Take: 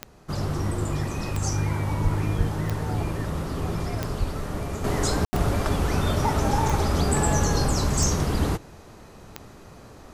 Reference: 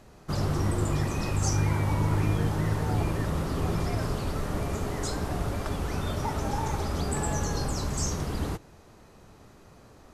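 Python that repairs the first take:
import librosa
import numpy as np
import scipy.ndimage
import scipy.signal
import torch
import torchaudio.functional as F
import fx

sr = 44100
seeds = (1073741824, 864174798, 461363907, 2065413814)

y = fx.fix_declick_ar(x, sr, threshold=10.0)
y = fx.highpass(y, sr, hz=140.0, slope=24, at=(2.03, 2.15), fade=0.02)
y = fx.highpass(y, sr, hz=140.0, slope=24, at=(2.37, 2.49), fade=0.02)
y = fx.highpass(y, sr, hz=140.0, slope=24, at=(4.19, 4.31), fade=0.02)
y = fx.fix_ambience(y, sr, seeds[0], print_start_s=8.65, print_end_s=9.15, start_s=5.25, end_s=5.33)
y = fx.gain(y, sr, db=fx.steps((0.0, 0.0), (4.84, -7.0)))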